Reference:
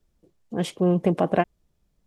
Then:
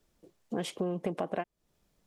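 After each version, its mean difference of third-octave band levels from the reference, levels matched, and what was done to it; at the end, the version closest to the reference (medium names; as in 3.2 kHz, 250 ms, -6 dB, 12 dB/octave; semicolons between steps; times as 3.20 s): 4.0 dB: bass shelf 170 Hz -12 dB; compression 6:1, threshold -35 dBFS, peak gain reduction 17.5 dB; trim +4.5 dB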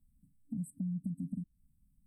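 14.0 dB: FFT band-reject 280–7700 Hz; compression 5:1, threshold -36 dBFS, peak gain reduction 14.5 dB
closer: first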